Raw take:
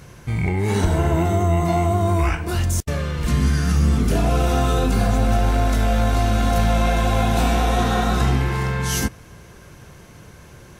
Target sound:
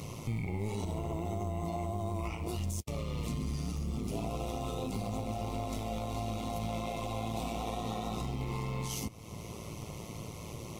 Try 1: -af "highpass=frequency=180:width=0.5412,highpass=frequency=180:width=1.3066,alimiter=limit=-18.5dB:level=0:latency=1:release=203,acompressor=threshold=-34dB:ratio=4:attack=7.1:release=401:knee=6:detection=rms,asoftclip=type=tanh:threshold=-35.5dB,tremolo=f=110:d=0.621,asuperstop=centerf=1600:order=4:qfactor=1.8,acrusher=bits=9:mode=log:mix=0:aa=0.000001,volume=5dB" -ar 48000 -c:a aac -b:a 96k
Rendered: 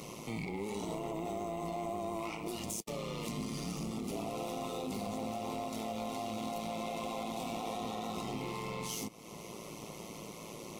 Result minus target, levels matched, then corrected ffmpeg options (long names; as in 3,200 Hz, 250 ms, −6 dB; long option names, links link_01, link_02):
125 Hz band −7.5 dB; soft clipping: distortion +11 dB
-af "highpass=frequency=71:width=0.5412,highpass=frequency=71:width=1.3066,alimiter=limit=-18.5dB:level=0:latency=1:release=203,acompressor=threshold=-34dB:ratio=4:attack=7.1:release=401:knee=6:detection=rms,asoftclip=type=tanh:threshold=-28dB,tremolo=f=110:d=0.621,asuperstop=centerf=1600:order=4:qfactor=1.8,acrusher=bits=9:mode=log:mix=0:aa=0.000001,volume=5dB" -ar 48000 -c:a aac -b:a 96k